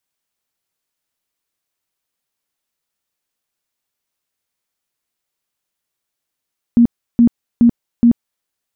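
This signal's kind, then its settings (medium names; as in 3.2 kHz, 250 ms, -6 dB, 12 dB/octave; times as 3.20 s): tone bursts 236 Hz, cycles 20, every 0.42 s, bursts 4, -5.5 dBFS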